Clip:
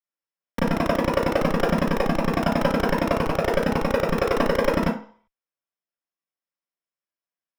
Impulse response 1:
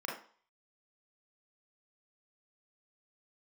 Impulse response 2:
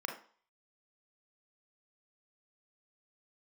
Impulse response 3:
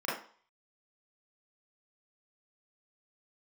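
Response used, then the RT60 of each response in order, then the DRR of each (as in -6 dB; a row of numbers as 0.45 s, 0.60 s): 3; 0.45 s, 0.45 s, 0.45 s; -3.0 dB, 2.0 dB, -8.5 dB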